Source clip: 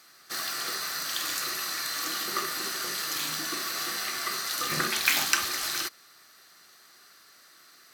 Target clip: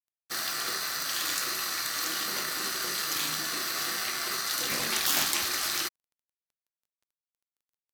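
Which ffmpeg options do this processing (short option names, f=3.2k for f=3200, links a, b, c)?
-af "afftfilt=real='re*lt(hypot(re,im),0.1)':imag='im*lt(hypot(re,im),0.1)':win_size=1024:overlap=0.75,acrusher=bits=8:mix=0:aa=0.000001,aeval=exprs='sgn(val(0))*max(abs(val(0))-0.00668,0)':c=same,volume=3dB"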